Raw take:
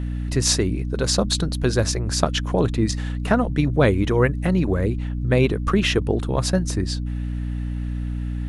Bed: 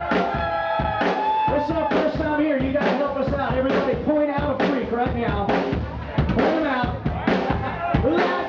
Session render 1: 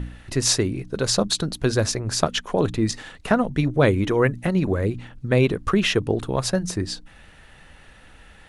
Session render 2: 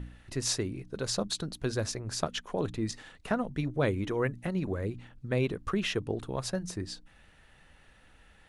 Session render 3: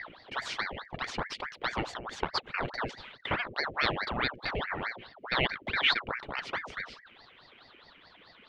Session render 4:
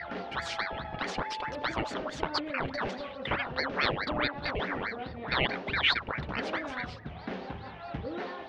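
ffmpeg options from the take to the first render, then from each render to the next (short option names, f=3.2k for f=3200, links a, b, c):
-af "bandreject=f=60:t=h:w=4,bandreject=f=120:t=h:w=4,bandreject=f=180:t=h:w=4,bandreject=f=240:t=h:w=4,bandreject=f=300:t=h:w=4"
-af "volume=-10.5dB"
-af "lowpass=f=2.6k:t=q:w=6.7,aeval=exprs='val(0)*sin(2*PI*1100*n/s+1100*0.8/4.7*sin(2*PI*4.7*n/s))':c=same"
-filter_complex "[1:a]volume=-17.5dB[a];[0:a][a]amix=inputs=2:normalize=0"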